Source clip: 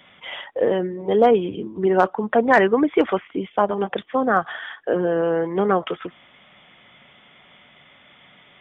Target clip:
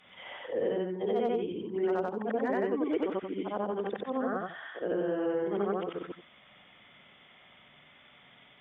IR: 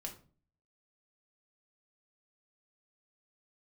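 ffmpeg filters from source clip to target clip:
-filter_complex "[0:a]afftfilt=real='re':imag='-im':win_size=8192:overlap=0.75,acrossover=split=220|490|1700[link_01][link_02][link_03][link_04];[link_01]acompressor=threshold=-45dB:ratio=4[link_05];[link_02]acompressor=threshold=-27dB:ratio=4[link_06];[link_03]acompressor=threshold=-37dB:ratio=4[link_07];[link_04]acompressor=threshold=-48dB:ratio=4[link_08];[link_05][link_06][link_07][link_08]amix=inputs=4:normalize=0,volume=-2dB"

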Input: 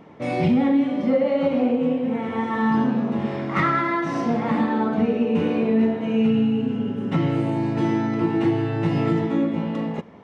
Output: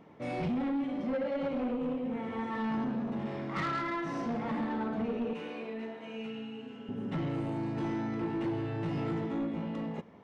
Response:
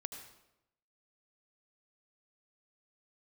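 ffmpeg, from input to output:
-filter_complex "[0:a]asettb=1/sr,asplit=3[link_01][link_02][link_03];[link_01]atrim=end=5.334[link_04];[link_02]atrim=start=5.33:end=6.89,asetpts=PTS-STARTPTS,afade=type=in:duration=0.004:curve=qsin,afade=type=out:start_time=1.556:duration=0.004:curve=qsin,highpass=frequency=1000:poles=1[link_05];[link_03]atrim=start=6.886[link_06];[link_04][link_05]acrossfade=duration=0.004:curve1=hsin:curve2=qsin[link_07];[link_07][link_06]acrossfade=duration=0.004:curve1=qsin:curve2=hsin,asoftclip=type=tanh:threshold=-19dB,volume=-9dB"

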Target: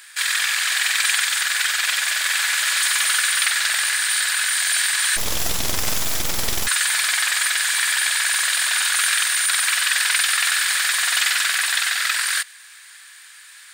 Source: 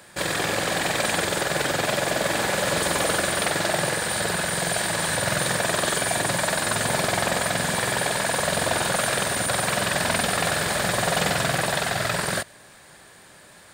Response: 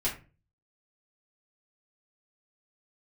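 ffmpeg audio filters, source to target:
-filter_complex "[0:a]highpass=frequency=1500:width=0.5412,highpass=frequency=1500:width=1.3066,asplit=3[link_01][link_02][link_03];[link_01]afade=type=out:start_time=5.16:duration=0.02[link_04];[link_02]aeval=exprs='abs(val(0))':channel_layout=same,afade=type=in:start_time=5.16:duration=0.02,afade=type=out:start_time=6.66:duration=0.02[link_05];[link_03]afade=type=in:start_time=6.66:duration=0.02[link_06];[link_04][link_05][link_06]amix=inputs=3:normalize=0,volume=7.5dB"

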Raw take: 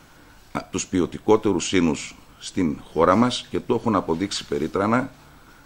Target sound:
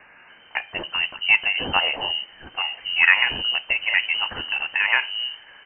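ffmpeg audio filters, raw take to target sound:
ffmpeg -i in.wav -filter_complex "[0:a]acrossover=split=250[link_01][link_02];[link_01]adelay=280[link_03];[link_03][link_02]amix=inputs=2:normalize=0,crystalizer=i=7:c=0,lowpass=frequency=2600:width_type=q:width=0.5098,lowpass=frequency=2600:width_type=q:width=0.6013,lowpass=frequency=2600:width_type=q:width=0.9,lowpass=frequency=2600:width_type=q:width=2.563,afreqshift=-3100,volume=-1dB" out.wav

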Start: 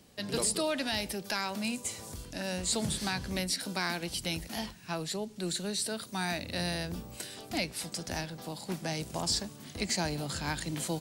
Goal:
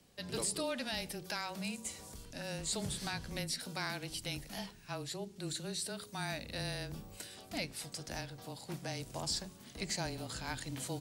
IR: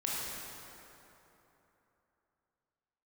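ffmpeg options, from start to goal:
-af "bandreject=frequency=48.65:width_type=h:width=4,bandreject=frequency=97.3:width_type=h:width=4,bandreject=frequency=145.95:width_type=h:width=4,bandreject=frequency=194.6:width_type=h:width=4,bandreject=frequency=243.25:width_type=h:width=4,bandreject=frequency=291.9:width_type=h:width=4,bandreject=frequency=340.55:width_type=h:width=4,bandreject=frequency=389.2:width_type=h:width=4,bandreject=frequency=437.85:width_type=h:width=4,afreqshift=-21,volume=-6dB"

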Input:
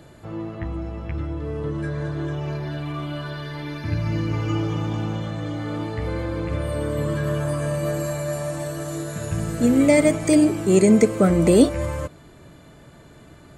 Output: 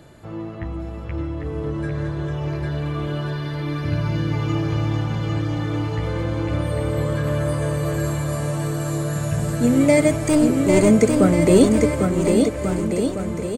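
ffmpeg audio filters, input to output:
ffmpeg -i in.wav -filter_complex "[0:a]asettb=1/sr,asplit=3[link_01][link_02][link_03];[link_01]atrim=end=10.284[link_04];[link_02]atrim=start=10.28:end=10.9,asetpts=PTS-STARTPTS,afade=type=in:duration=0.004:curve=qsin,afade=type=out:start_time=0.616:duration=0.004:curve=qsin,aeval=exprs='clip(val(0),-1,0.15)':channel_layout=same[link_05];[link_03]atrim=start=10.896[link_06];[link_04][link_05]acrossfade=duration=0.004:curve1=hsin:curve2=qsin[link_07];[link_07][link_06]acrossfade=duration=0.004:curve1=qsin:curve2=hsin,aecho=1:1:800|1440|1952|2362|2689:0.631|0.398|0.251|0.158|0.1" out.wav

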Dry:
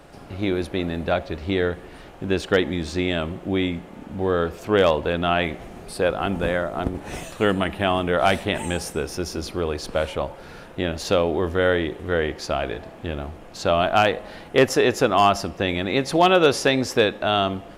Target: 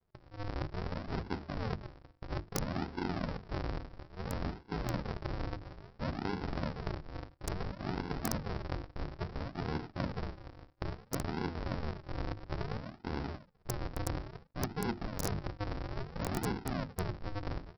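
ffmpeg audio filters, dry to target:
ffmpeg -i in.wav -af "highpass=54,bandreject=frequency=3300:width=10,aresample=11025,acrusher=samples=36:mix=1:aa=0.000001:lfo=1:lforange=36:lforate=0.59,aresample=44100,bandreject=frequency=50:width_type=h:width=6,bandreject=frequency=100:width_type=h:width=6,bandreject=frequency=150:width_type=h:width=6,bandreject=frequency=200:width_type=h:width=6,bandreject=frequency=250:width_type=h:width=6,bandreject=frequency=300:width_type=h:width=6,bandreject=frequency=350:width_type=h:width=6,aeval=exprs='(mod(2.37*val(0)+1,2)-1)/2.37':channel_layout=same,areverse,acompressor=threshold=-28dB:ratio=12,areverse,equalizer=frequency=3200:width_type=o:width=1.2:gain=-8,agate=range=-33dB:threshold=-37dB:ratio=3:detection=peak,lowshelf=frequency=210:gain=-7" out.wav

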